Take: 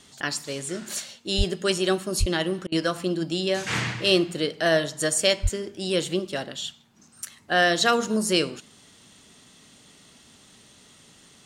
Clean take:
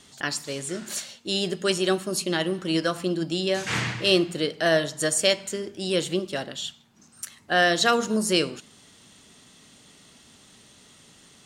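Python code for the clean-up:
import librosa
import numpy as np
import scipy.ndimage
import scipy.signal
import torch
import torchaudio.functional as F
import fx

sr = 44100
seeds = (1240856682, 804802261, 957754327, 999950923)

y = fx.fix_deplosive(x, sr, at_s=(1.37, 2.19, 5.42))
y = fx.fix_interpolate(y, sr, at_s=(2.67,), length_ms=49.0)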